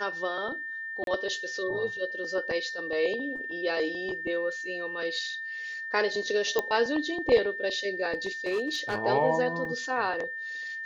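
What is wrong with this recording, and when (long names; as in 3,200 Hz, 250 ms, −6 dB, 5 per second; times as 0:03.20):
whistle 1,800 Hz −34 dBFS
0:01.04–0:01.07: drop-out 32 ms
0:06.59: click −12 dBFS
0:08.13–0:08.99: clipping −24.5 dBFS
0:09.65: drop-out 2.7 ms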